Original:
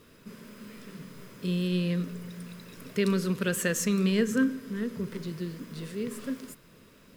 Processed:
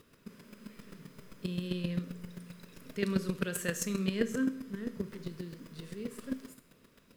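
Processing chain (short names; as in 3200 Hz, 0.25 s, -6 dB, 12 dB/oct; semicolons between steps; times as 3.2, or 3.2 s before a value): Schroeder reverb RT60 0.53 s, combs from 27 ms, DRR 9 dB; chopper 7.6 Hz, depth 65%, duty 10%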